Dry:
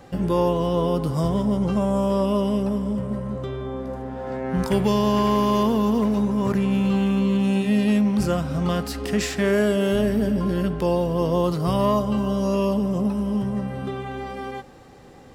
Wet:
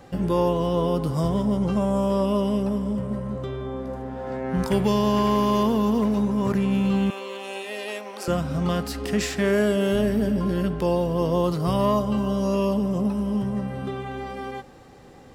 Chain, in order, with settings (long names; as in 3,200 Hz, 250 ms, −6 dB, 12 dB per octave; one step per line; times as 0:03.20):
0:07.10–0:08.28: high-pass filter 450 Hz 24 dB per octave
level −1 dB